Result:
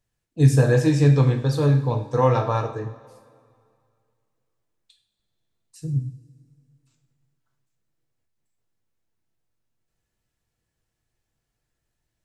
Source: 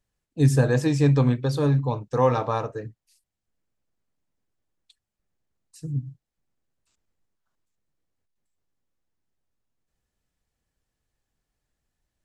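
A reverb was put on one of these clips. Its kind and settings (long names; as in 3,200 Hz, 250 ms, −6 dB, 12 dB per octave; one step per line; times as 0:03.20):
coupled-rooms reverb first 0.45 s, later 2.3 s, from −18 dB, DRR 2.5 dB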